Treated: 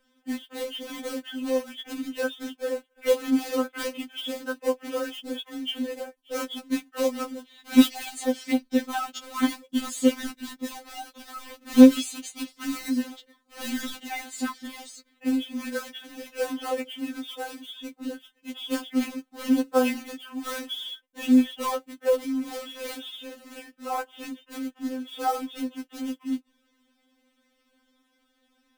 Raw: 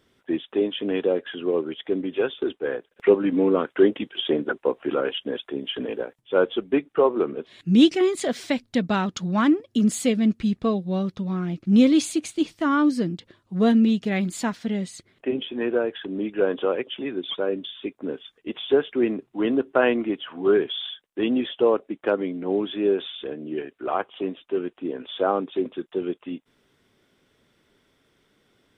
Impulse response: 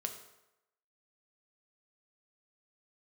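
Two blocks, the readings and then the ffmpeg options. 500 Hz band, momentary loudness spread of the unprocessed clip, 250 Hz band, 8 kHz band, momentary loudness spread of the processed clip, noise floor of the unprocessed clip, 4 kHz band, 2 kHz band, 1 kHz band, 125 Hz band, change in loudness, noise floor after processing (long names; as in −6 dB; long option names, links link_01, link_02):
−7.0 dB, 12 LU, −2.5 dB, +1.0 dB, 15 LU, −67 dBFS, −2.5 dB, −4.0 dB, −3.0 dB, below −20 dB, −3.5 dB, −70 dBFS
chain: -af "acrusher=bits=3:mode=log:mix=0:aa=0.000001,afftfilt=real='re*3.46*eq(mod(b,12),0)':imag='im*3.46*eq(mod(b,12),0)':win_size=2048:overlap=0.75,volume=-1.5dB"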